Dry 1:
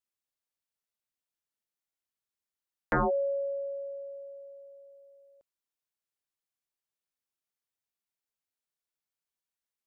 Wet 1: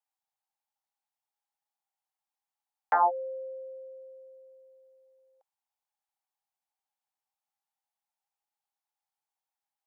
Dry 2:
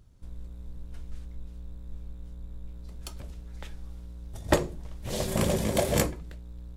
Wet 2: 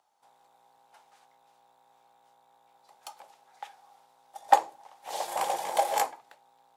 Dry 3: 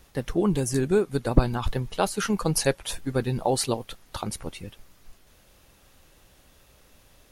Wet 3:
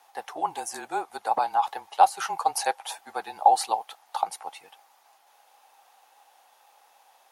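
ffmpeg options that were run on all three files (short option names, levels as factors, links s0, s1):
-af "afreqshift=-31,highpass=f=810:t=q:w=10,volume=0.631"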